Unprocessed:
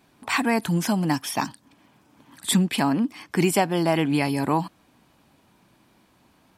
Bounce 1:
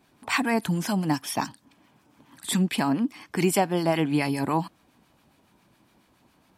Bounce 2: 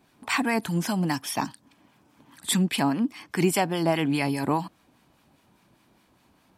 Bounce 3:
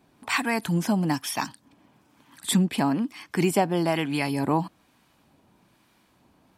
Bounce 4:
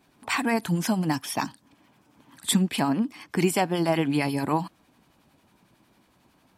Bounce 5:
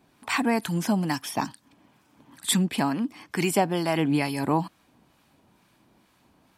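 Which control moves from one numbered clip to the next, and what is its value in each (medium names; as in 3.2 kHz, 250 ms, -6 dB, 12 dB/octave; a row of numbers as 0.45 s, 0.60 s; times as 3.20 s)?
harmonic tremolo, rate: 7.2 Hz, 4.9 Hz, 1.1 Hz, 11 Hz, 2.2 Hz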